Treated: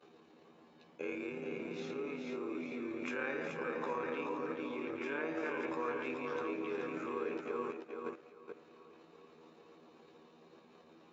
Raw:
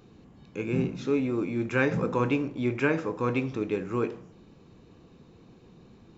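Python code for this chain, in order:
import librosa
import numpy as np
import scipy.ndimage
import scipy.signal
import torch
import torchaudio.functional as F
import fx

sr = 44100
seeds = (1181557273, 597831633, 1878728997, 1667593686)

y = fx.reverse_delay_fb(x, sr, ms=228, feedback_pct=44, wet_db=-6.5)
y = fx.lowpass(y, sr, hz=3100.0, slope=6)
y = fx.level_steps(y, sr, step_db=19)
y = fx.stretch_grains(y, sr, factor=1.8, grain_ms=56.0)
y = scipy.signal.sosfilt(scipy.signal.butter(2, 420.0, 'highpass', fs=sr, output='sos'), y)
y = y + 10.0 ** (-5.5 / 20.0) * np.pad(y, (int(430 * sr / 1000.0), 0))[:len(y)]
y = y * librosa.db_to_amplitude(4.5)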